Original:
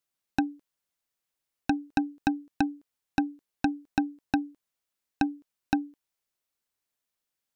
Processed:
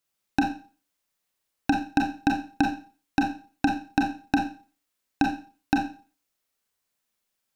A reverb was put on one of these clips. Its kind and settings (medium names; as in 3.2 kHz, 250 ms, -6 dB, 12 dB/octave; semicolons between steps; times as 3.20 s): Schroeder reverb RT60 0.37 s, combs from 29 ms, DRR 1 dB; trim +3 dB